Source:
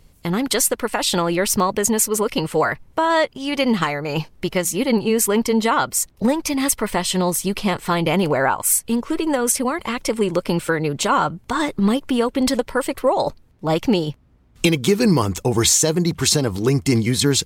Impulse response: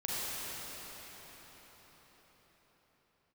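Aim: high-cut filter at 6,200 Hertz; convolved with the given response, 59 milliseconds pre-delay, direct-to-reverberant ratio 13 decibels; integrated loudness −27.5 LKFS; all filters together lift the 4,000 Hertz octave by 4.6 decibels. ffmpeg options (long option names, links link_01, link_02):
-filter_complex "[0:a]lowpass=6200,equalizer=frequency=4000:width_type=o:gain=6.5,asplit=2[link_01][link_02];[1:a]atrim=start_sample=2205,adelay=59[link_03];[link_02][link_03]afir=irnorm=-1:irlink=0,volume=-19.5dB[link_04];[link_01][link_04]amix=inputs=2:normalize=0,volume=-8.5dB"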